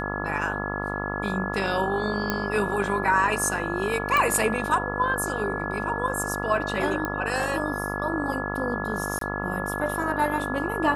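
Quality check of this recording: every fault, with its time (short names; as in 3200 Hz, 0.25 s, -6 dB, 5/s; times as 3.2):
buzz 50 Hz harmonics 28 -31 dBFS
tone 1700 Hz -32 dBFS
2.3 pop -9 dBFS
4.17 pop
7.05 pop -14 dBFS
9.19–9.21 gap 23 ms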